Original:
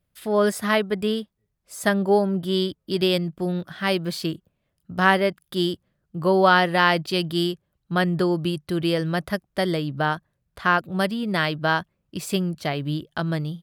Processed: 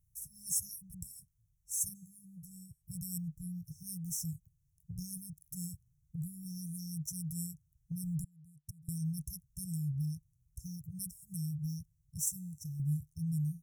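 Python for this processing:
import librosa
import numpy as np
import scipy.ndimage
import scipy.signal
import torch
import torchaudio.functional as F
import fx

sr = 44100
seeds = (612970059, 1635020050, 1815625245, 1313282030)

y = fx.gate_flip(x, sr, shuts_db=-25.0, range_db=-24, at=(8.24, 8.89))
y = fx.brickwall_bandstop(y, sr, low_hz=160.0, high_hz=5300.0)
y = fx.peak_eq(y, sr, hz=5100.0, db=-5.5, octaves=0.23)
y = fx.comb_fb(y, sr, f0_hz=100.0, decay_s=1.1, harmonics='all', damping=0.0, mix_pct=50, at=(12.29, 12.8))
y = fx.dynamic_eq(y, sr, hz=150.0, q=0.71, threshold_db=-45.0, ratio=4.0, max_db=-4)
y = fx.comb_fb(y, sr, f0_hz=250.0, decay_s=0.87, harmonics='all', damping=0.0, mix_pct=60, at=(1.94, 2.81), fade=0.02)
y = F.gain(torch.from_numpy(y), 3.0).numpy()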